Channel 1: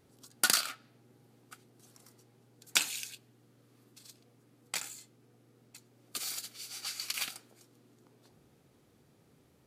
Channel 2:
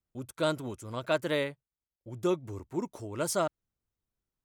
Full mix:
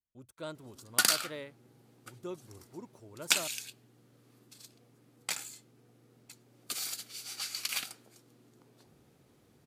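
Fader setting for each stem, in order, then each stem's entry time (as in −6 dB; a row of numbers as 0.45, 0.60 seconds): +1.0, −13.0 decibels; 0.55, 0.00 seconds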